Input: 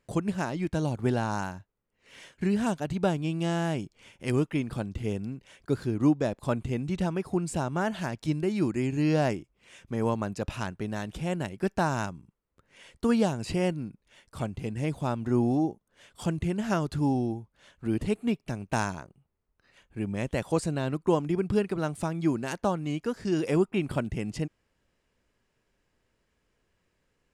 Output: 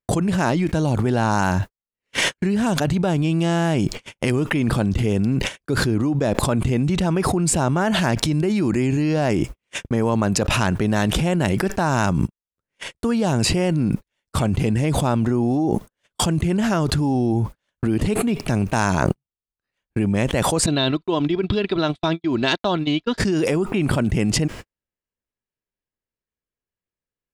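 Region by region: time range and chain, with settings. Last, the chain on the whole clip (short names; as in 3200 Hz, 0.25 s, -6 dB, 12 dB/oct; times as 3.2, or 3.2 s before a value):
20.66–23.18 synth low-pass 3700 Hz, resonance Q 8.1 + comb 3 ms, depth 37% + upward expander 2.5:1, over -39 dBFS
whole clip: gate -48 dBFS, range -59 dB; fast leveller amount 100%; gain -1 dB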